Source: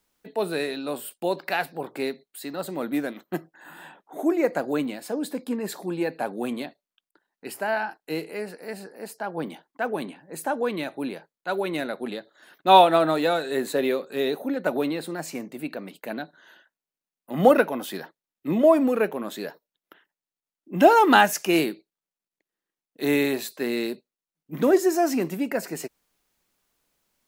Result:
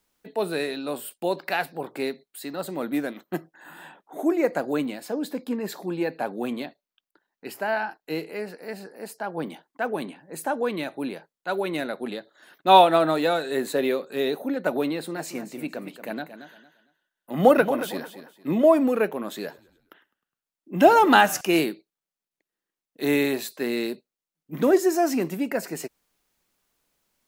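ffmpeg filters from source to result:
ffmpeg -i in.wav -filter_complex "[0:a]asettb=1/sr,asplit=3[link_01][link_02][link_03];[link_01]atrim=end=5.054[link_04];[link_02]atrim=start=5.05:end=8.85,asetpts=PTS-STARTPTS,afade=type=in:duration=0.004:curve=qsin,afade=type=out:start_time=3.796:duration=0.004:curve=qsin,equalizer=frequency=9200:width=2.1:gain=-7[link_05];[link_03]atrim=start=8.846[link_06];[link_04][link_05]acrossfade=duration=0.004:curve1=hsin:curve2=qsin[link_07];[link_07][link_06]acrossfade=duration=0.004:curve1=qsin:curve2=hsin,asettb=1/sr,asplit=3[link_08][link_09][link_10];[link_08]atrim=end=14.934[link_11];[link_09]atrim=start=14.93:end=18.56,asetpts=PTS-STARTPTS,afade=type=in:duration=0.004:curve=qsin,afade=type=out:start_time=3.626:duration=0.004:curve=qsin,aecho=1:1:228|456|684:0.266|0.0665|0.0166,atrim=end_sample=160083[link_12];[link_10]atrim=start=18.556[link_13];[link_11][link_12]acrossfade=duration=0.004:curve1=hsin:curve2=qsin[link_14];[link_14][link_13]acrossfade=duration=0.004:curve1=qsin:curve2=hsin,asettb=1/sr,asplit=3[link_15][link_16][link_17];[link_15]atrim=end=19.264[link_18];[link_16]atrim=start=19.26:end=21.41,asetpts=PTS-STARTPTS,afade=type=in:duration=0.004:curve=qsin,afade=type=out:start_time=2.146:duration=0.004:curve=qsin,asplit=5[link_19][link_20][link_21][link_22][link_23];[link_20]adelay=103,afreqshift=-44,volume=-22dB[link_24];[link_21]adelay=206,afreqshift=-88,volume=-27.5dB[link_25];[link_22]adelay=309,afreqshift=-132,volume=-33dB[link_26];[link_23]adelay=412,afreqshift=-176,volume=-38.5dB[link_27];[link_19][link_24][link_25][link_26][link_27]amix=inputs=5:normalize=0,atrim=end_sample=94815[link_28];[link_17]atrim=start=21.406[link_29];[link_18][link_28]acrossfade=duration=0.004:curve1=hsin:curve2=qsin[link_30];[link_30][link_29]acrossfade=duration=0.004:curve1=qsin:curve2=hsin" out.wav

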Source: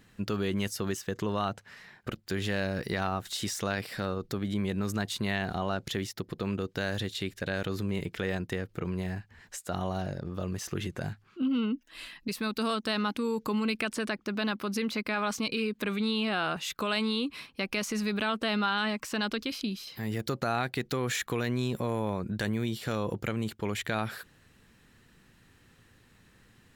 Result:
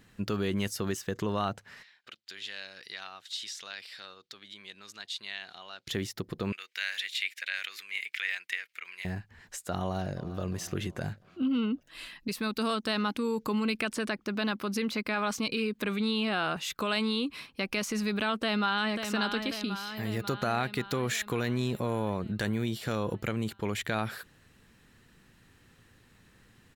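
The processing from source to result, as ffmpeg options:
ffmpeg -i in.wav -filter_complex "[0:a]asplit=3[link_01][link_02][link_03];[link_01]afade=type=out:start_time=1.82:duration=0.02[link_04];[link_02]bandpass=frequency=3700:width_type=q:width=1.4,afade=type=in:start_time=1.82:duration=0.02,afade=type=out:start_time=5.87:duration=0.02[link_05];[link_03]afade=type=in:start_time=5.87:duration=0.02[link_06];[link_04][link_05][link_06]amix=inputs=3:normalize=0,asettb=1/sr,asplit=3[link_07][link_08][link_09];[link_07]atrim=end=6.524[link_10];[link_08]atrim=start=6.52:end=9.05,asetpts=PTS-STARTPTS,afade=type=in:duration=0.004:curve=qsin,afade=type=out:start_time=2.526:duration=0.004:curve=qsin,highpass=frequency=2200:width_type=q:width=3.7[link_11];[link_09]atrim=start=9.046[link_12];[link_10][link_11]acrossfade=duration=0.004:curve1=hsin:curve2=qsin[link_13];[link_13][link_12]acrossfade=duration=0.004:curve1=qsin:curve2=hsin,asplit=2[link_14][link_15];[link_15]afade=type=in:start_time=9.81:duration=0.01,afade=type=out:start_time=10.4:duration=0.01,aecho=0:1:350|700|1050|1400|1750:0.177828|0.088914|0.044457|0.0222285|0.0111142[link_16];[link_14][link_16]amix=inputs=2:normalize=0,asplit=2[link_17][link_18];[link_18]afade=type=in:start_time=18.41:duration=0.01,afade=type=out:start_time=19.01:duration=0.01,aecho=0:1:540|1080|1620|2160|2700|3240|3780|4320|4860:0.446684|0.290344|0.188724|0.12267|0.0797358|0.0518283|0.0336884|0.0218974|0.0142333[link_19];[link_17][link_19]amix=inputs=2:normalize=0" out.wav

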